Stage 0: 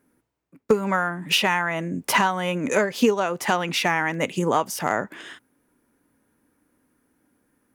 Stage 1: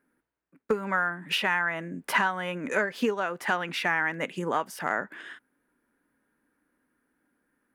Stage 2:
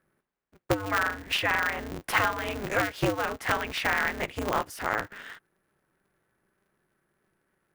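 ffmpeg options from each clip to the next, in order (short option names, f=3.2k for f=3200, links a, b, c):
-af "equalizer=f=100:t=o:w=0.67:g=-11,equalizer=f=1.6k:t=o:w=0.67:g=8,equalizer=f=6.3k:t=o:w=0.67:g=-6,equalizer=f=16k:t=o:w=0.67:g=-6,volume=-7.5dB"
-af "aeval=exprs='val(0)*sgn(sin(2*PI*100*n/s))':c=same"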